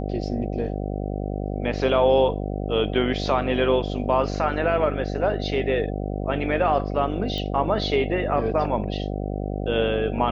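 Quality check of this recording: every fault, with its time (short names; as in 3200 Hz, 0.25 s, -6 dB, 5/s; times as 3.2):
buzz 50 Hz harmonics 15 -28 dBFS
7.38 pop -18 dBFS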